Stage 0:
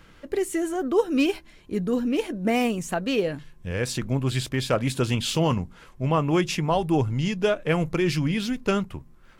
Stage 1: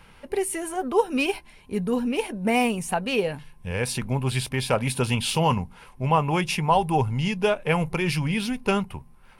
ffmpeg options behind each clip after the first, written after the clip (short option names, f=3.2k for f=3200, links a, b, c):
-af "superequalizer=6b=0.447:9b=2.24:12b=1.58:15b=0.708:16b=2.51"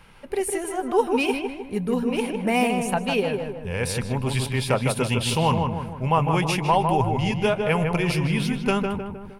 -filter_complex "[0:a]asplit=2[a][b];[b]adelay=155,lowpass=f=1.8k:p=1,volume=-4dB,asplit=2[c][d];[d]adelay=155,lowpass=f=1.8k:p=1,volume=0.51,asplit=2[e][f];[f]adelay=155,lowpass=f=1.8k:p=1,volume=0.51,asplit=2[g][h];[h]adelay=155,lowpass=f=1.8k:p=1,volume=0.51,asplit=2[i][j];[j]adelay=155,lowpass=f=1.8k:p=1,volume=0.51,asplit=2[k][l];[l]adelay=155,lowpass=f=1.8k:p=1,volume=0.51,asplit=2[m][n];[n]adelay=155,lowpass=f=1.8k:p=1,volume=0.51[o];[a][c][e][g][i][k][m][o]amix=inputs=8:normalize=0"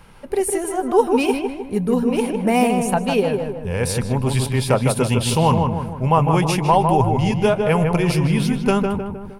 -af "equalizer=f=2.5k:t=o:w=1.6:g=-6,volume=5.5dB"